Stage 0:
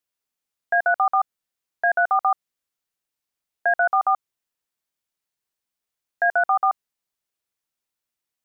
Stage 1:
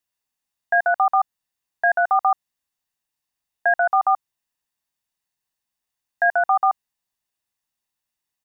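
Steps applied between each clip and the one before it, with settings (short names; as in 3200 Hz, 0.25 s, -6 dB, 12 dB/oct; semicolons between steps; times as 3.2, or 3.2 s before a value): comb 1.1 ms, depth 37%; gain +1 dB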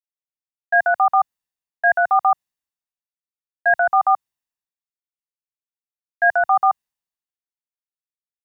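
three-band expander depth 70%; gain +1.5 dB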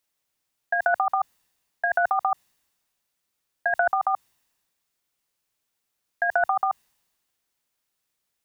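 negative-ratio compressor -27 dBFS, ratio -1; gain +5 dB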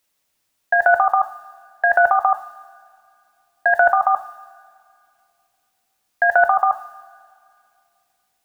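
reverb, pre-delay 3 ms, DRR 8.5 dB; gain +7 dB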